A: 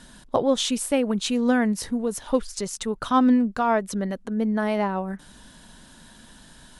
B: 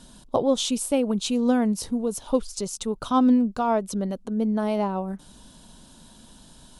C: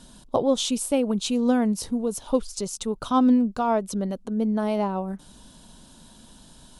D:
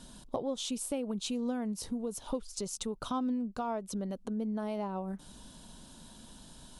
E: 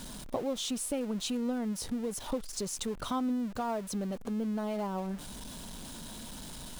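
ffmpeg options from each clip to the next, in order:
-af "equalizer=f=1.8k:t=o:w=0.72:g=-12.5"
-af anull
-af "acompressor=threshold=-32dB:ratio=3,volume=-2.5dB"
-af "aeval=exprs='val(0)+0.5*0.00841*sgn(val(0))':c=same"

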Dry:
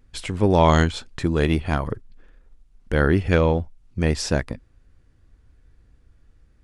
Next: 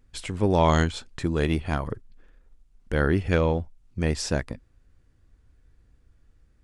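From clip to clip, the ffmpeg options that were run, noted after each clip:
-af "equalizer=f=7.8k:t=o:w=0.73:g=2.5,volume=-4dB"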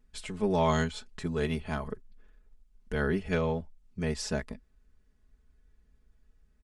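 -af "aecho=1:1:4.7:0.88,volume=-8dB"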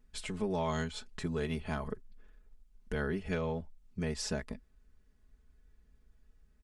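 -af "acompressor=threshold=-32dB:ratio=3"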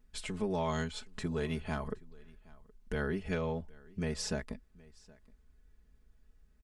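-af "aecho=1:1:770:0.0631"

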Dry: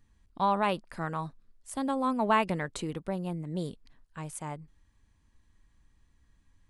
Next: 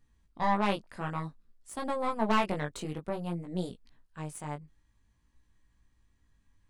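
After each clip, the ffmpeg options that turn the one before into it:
-af "aeval=exprs='0.224*(cos(1*acos(clip(val(0)/0.224,-1,1)))-cos(1*PI/2))+0.0501*(cos(4*acos(clip(val(0)/0.224,-1,1)))-cos(4*PI/2))+0.0126*(cos(6*acos(clip(val(0)/0.224,-1,1)))-cos(6*PI/2))+0.00891*(cos(8*acos(clip(val(0)/0.224,-1,1)))-cos(8*PI/2))':c=same,flanger=delay=16.5:depth=4:speed=0.55"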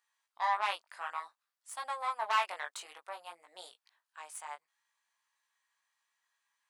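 -af "highpass=f=810:w=0.5412,highpass=f=810:w=1.3066"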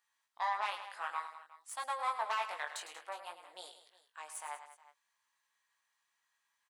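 -filter_complex "[0:a]alimiter=level_in=0.5dB:limit=-24dB:level=0:latency=1:release=226,volume=-0.5dB,asplit=2[a][b];[b]aecho=0:1:105|187|362:0.282|0.178|0.112[c];[a][c]amix=inputs=2:normalize=0"

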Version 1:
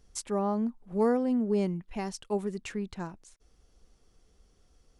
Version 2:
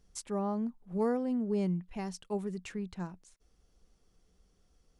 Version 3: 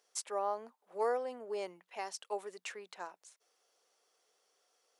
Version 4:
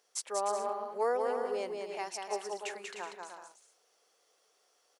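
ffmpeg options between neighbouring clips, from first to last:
-af "equalizer=f=180:w=7.3:g=7.5,volume=-5dB"
-af "highpass=f=500:w=0.5412,highpass=f=500:w=1.3066,volume=3dB"
-af "aecho=1:1:190|304|372.4|413.4|438.1:0.631|0.398|0.251|0.158|0.1,volume=2dB"

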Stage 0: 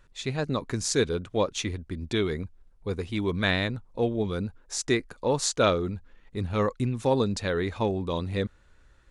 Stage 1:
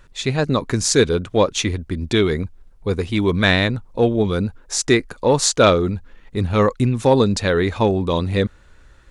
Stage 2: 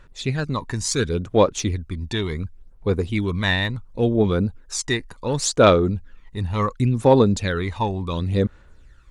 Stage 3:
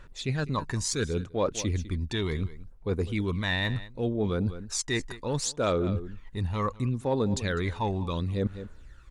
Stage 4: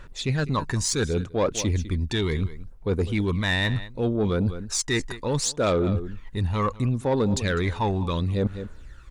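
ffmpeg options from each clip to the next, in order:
-af "acontrast=86,volume=2.5dB"
-af "aphaser=in_gain=1:out_gain=1:delay=1.1:decay=0.57:speed=0.7:type=sinusoidal,volume=-7dB"
-af "aecho=1:1:202:0.1,areverse,acompressor=threshold=-26dB:ratio=4,areverse"
-af "asoftclip=type=tanh:threshold=-20dB,volume=5.5dB"

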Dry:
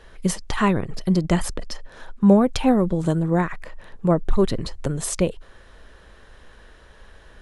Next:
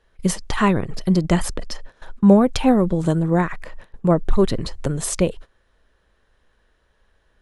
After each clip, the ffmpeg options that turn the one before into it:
-af "agate=range=-17dB:threshold=-36dB:ratio=16:detection=peak,volume=2dB"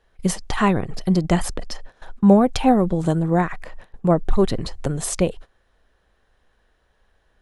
-af "equalizer=f=750:t=o:w=0.22:g=6.5,volume=-1dB"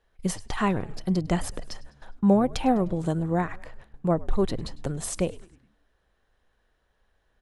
-filter_complex "[0:a]asplit=5[a][b][c][d][e];[b]adelay=102,afreqshift=-76,volume=-21.5dB[f];[c]adelay=204,afreqshift=-152,volume=-26.9dB[g];[d]adelay=306,afreqshift=-228,volume=-32.2dB[h];[e]adelay=408,afreqshift=-304,volume=-37.6dB[i];[a][f][g][h][i]amix=inputs=5:normalize=0,volume=-6.5dB"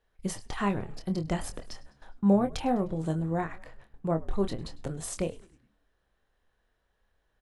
-filter_complex "[0:a]asplit=2[a][b];[b]adelay=25,volume=-8dB[c];[a][c]amix=inputs=2:normalize=0,volume=-5dB"

